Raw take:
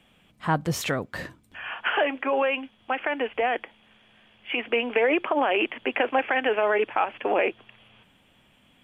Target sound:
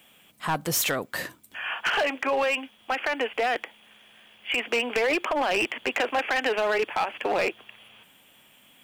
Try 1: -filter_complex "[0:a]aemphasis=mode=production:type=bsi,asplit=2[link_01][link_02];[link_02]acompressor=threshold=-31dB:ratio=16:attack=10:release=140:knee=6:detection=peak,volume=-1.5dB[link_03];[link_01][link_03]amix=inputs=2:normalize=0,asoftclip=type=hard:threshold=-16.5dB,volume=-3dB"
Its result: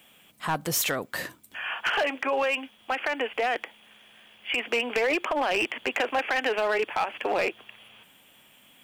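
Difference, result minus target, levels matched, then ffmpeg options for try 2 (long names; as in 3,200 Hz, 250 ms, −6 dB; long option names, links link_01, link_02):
downward compressor: peak gain reduction +6.5 dB
-filter_complex "[0:a]aemphasis=mode=production:type=bsi,asplit=2[link_01][link_02];[link_02]acompressor=threshold=-24dB:ratio=16:attack=10:release=140:knee=6:detection=peak,volume=-1.5dB[link_03];[link_01][link_03]amix=inputs=2:normalize=0,asoftclip=type=hard:threshold=-16.5dB,volume=-3dB"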